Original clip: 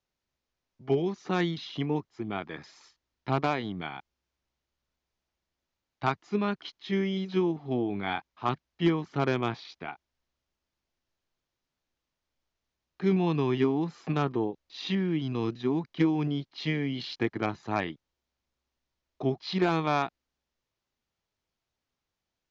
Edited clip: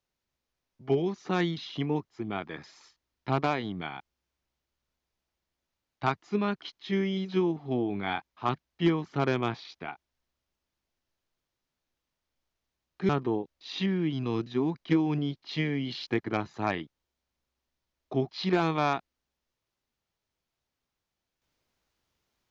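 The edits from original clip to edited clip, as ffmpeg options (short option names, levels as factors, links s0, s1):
-filter_complex "[0:a]asplit=2[s0][s1];[s0]atrim=end=13.092[s2];[s1]atrim=start=14.178[s3];[s2][s3]acrossfade=d=0.004:c1=hsin:c2=hsin"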